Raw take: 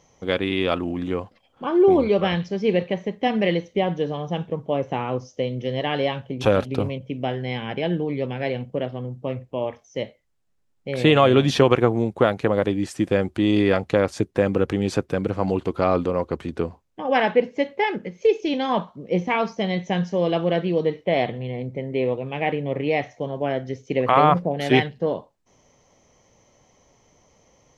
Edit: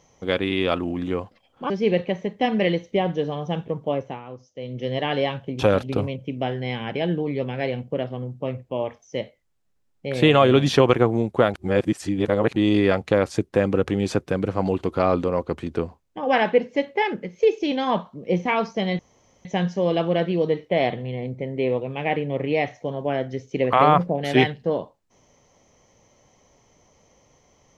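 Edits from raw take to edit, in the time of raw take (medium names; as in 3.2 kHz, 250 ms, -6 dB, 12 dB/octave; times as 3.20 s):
1.70–2.52 s: delete
4.60–5.81 s: dip -12.5 dB, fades 0.42 s equal-power
12.36–13.38 s: reverse
19.81 s: insert room tone 0.46 s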